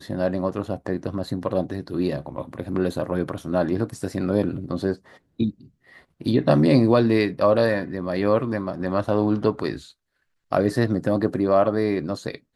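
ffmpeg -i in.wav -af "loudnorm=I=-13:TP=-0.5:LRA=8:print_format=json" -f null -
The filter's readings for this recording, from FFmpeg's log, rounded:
"input_i" : "-23.3",
"input_tp" : "-4.3",
"input_lra" : "5.5",
"input_thresh" : "-33.7",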